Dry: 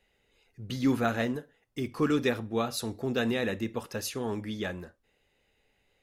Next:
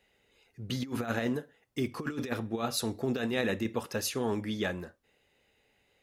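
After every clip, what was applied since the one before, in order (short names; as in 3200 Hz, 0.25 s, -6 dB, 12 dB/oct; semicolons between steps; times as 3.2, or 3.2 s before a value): HPF 79 Hz 6 dB/oct; negative-ratio compressor -30 dBFS, ratio -0.5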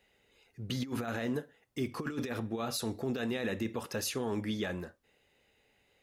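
limiter -24.5 dBFS, peak gain reduction 9 dB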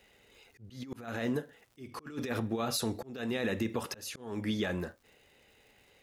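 crackle 190/s -60 dBFS; compressor 2:1, threshold -38 dBFS, peak gain reduction 5.5 dB; auto swell 0.341 s; gain +6.5 dB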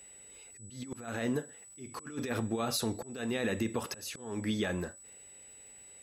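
whine 7900 Hz -51 dBFS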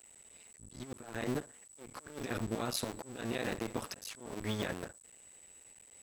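cycle switcher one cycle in 2, muted; gain -1.5 dB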